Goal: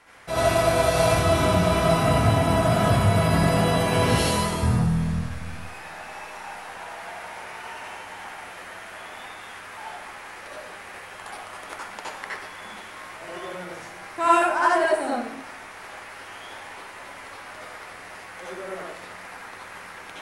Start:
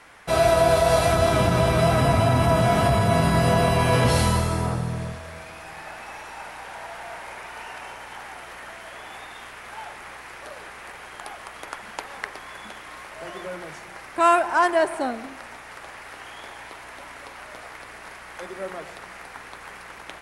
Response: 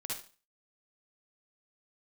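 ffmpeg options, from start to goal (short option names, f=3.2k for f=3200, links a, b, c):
-filter_complex "[0:a]asplit=3[a][b][c];[a]afade=t=out:st=4.62:d=0.02[d];[b]asubboost=boost=9.5:cutoff=160,afade=t=in:st=4.62:d=0.02,afade=t=out:st=5.56:d=0.02[e];[c]afade=t=in:st=5.56:d=0.02[f];[d][e][f]amix=inputs=3:normalize=0[g];[1:a]atrim=start_sample=2205,asetrate=34398,aresample=44100[h];[g][h]afir=irnorm=-1:irlink=0,volume=-2dB"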